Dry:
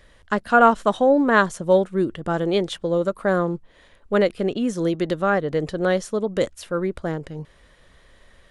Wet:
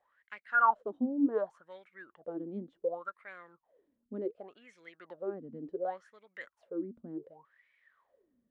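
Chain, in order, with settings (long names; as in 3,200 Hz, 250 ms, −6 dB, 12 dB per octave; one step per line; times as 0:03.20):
LFO wah 0.68 Hz 230–2,300 Hz, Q 14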